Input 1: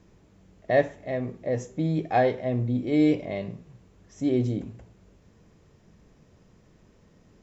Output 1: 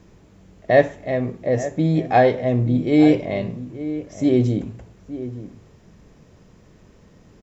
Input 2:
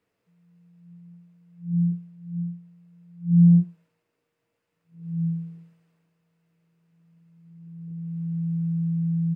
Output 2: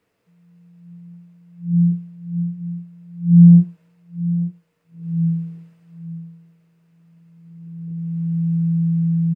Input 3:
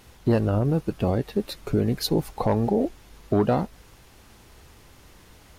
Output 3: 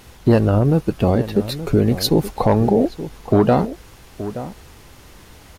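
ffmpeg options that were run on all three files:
-filter_complex "[0:a]asplit=2[s0][s1];[s1]adelay=874.6,volume=0.224,highshelf=f=4000:g=-19.7[s2];[s0][s2]amix=inputs=2:normalize=0,volume=2.24"

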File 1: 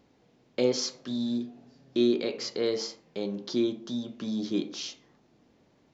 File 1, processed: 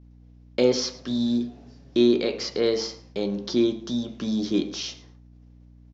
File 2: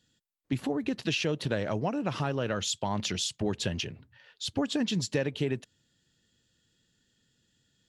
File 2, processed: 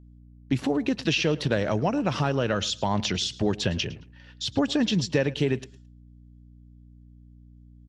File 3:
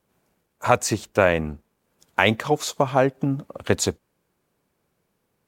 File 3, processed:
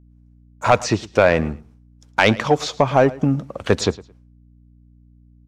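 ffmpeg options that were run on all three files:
-filter_complex "[0:a]lowpass=8500,agate=range=0.0224:threshold=0.002:ratio=3:detection=peak,equalizer=f=5600:t=o:w=0.27:g=5,acrossover=split=5000[s0][s1];[s1]acompressor=threshold=0.00398:ratio=4[s2];[s0][s2]amix=inputs=2:normalize=0,aeval=exprs='val(0)+0.002*(sin(2*PI*60*n/s)+sin(2*PI*2*60*n/s)/2+sin(2*PI*3*60*n/s)/3+sin(2*PI*4*60*n/s)/4+sin(2*PI*5*60*n/s)/5)':c=same,asoftclip=type=tanh:threshold=0.398,aecho=1:1:109|218:0.1|0.02,volume=1.88"

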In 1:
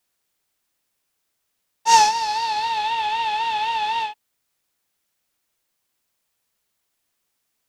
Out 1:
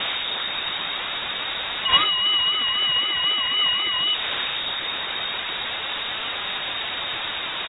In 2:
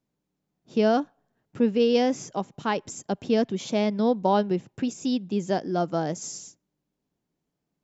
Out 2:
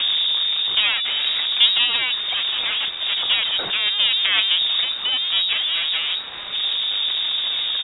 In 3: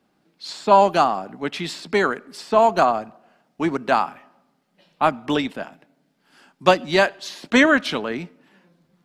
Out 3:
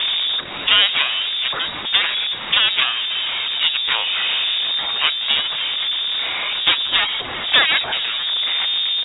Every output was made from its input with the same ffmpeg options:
-filter_complex "[0:a]aeval=exprs='val(0)+0.5*0.141*sgn(val(0))':c=same,equalizer=f=70:w=0.35:g=14.5,asplit=2[s0][s1];[s1]acompressor=threshold=0.1:ratio=6,volume=1.41[s2];[s0][s2]amix=inputs=2:normalize=0,aeval=exprs='1.68*(cos(1*acos(clip(val(0)/1.68,-1,1)))-cos(1*PI/2))+0.266*(cos(2*acos(clip(val(0)/1.68,-1,1)))-cos(2*PI/2))+0.237*(cos(5*acos(clip(val(0)/1.68,-1,1)))-cos(5*PI/2))+0.0133*(cos(6*acos(clip(val(0)/1.68,-1,1)))-cos(6*PI/2))+0.841*(cos(7*acos(clip(val(0)/1.68,-1,1)))-cos(7*PI/2))':c=same,aphaser=in_gain=1:out_gain=1:delay=4.7:decay=0.28:speed=0.23:type=sinusoidal,asplit=2[s3][s4];[s4]aecho=0:1:416:0.075[s5];[s3][s5]amix=inputs=2:normalize=0,lowpass=f=3200:t=q:w=0.5098,lowpass=f=3200:t=q:w=0.6013,lowpass=f=3200:t=q:w=0.9,lowpass=f=3200:t=q:w=2.563,afreqshift=-3800,volume=0.316"

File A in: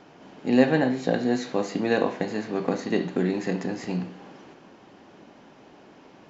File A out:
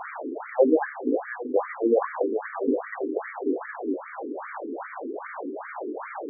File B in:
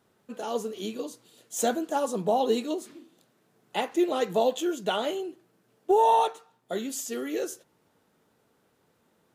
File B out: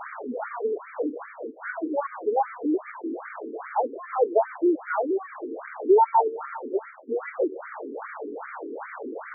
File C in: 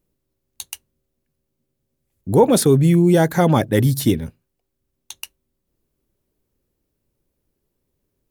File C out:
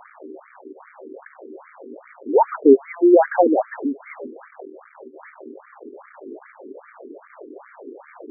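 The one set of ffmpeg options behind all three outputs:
-af "aeval=exprs='val(0)+0.5*0.0473*sgn(val(0))':c=same,aemphasis=mode=reproduction:type=75kf,afftfilt=real='re*between(b*sr/1024,310*pow(1700/310,0.5+0.5*sin(2*PI*2.5*pts/sr))/1.41,310*pow(1700/310,0.5+0.5*sin(2*PI*2.5*pts/sr))*1.41)':imag='im*between(b*sr/1024,310*pow(1700/310,0.5+0.5*sin(2*PI*2.5*pts/sr))/1.41,310*pow(1700/310,0.5+0.5*sin(2*PI*2.5*pts/sr))*1.41)':win_size=1024:overlap=0.75,volume=1.68"

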